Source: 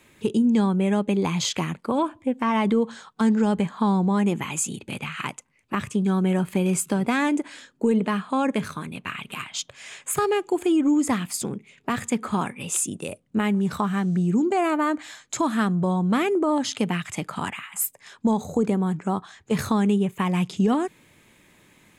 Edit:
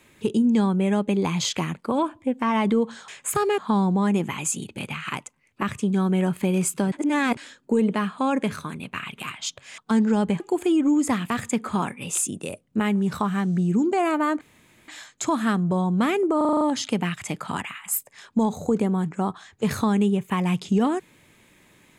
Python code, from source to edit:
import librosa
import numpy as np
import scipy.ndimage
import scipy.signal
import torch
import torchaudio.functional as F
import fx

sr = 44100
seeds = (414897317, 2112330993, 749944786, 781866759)

y = fx.edit(x, sr, fx.swap(start_s=3.08, length_s=0.62, other_s=9.9, other_length_s=0.5),
    fx.reverse_span(start_s=7.04, length_s=0.45),
    fx.cut(start_s=11.3, length_s=0.59),
    fx.insert_room_tone(at_s=15.0, length_s=0.47),
    fx.stutter(start_s=16.49, slice_s=0.04, count=7), tone=tone)